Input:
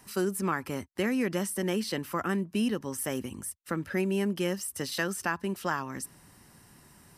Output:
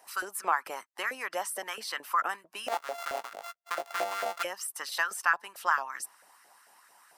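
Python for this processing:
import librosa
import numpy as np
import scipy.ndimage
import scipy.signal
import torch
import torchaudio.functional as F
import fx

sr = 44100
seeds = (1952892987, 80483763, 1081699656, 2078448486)

y = fx.sample_sort(x, sr, block=64, at=(2.68, 4.43))
y = fx.hpss(y, sr, part='harmonic', gain_db=-8)
y = fx.filter_lfo_highpass(y, sr, shape='saw_up', hz=4.5, low_hz=580.0, high_hz=1500.0, q=3.4)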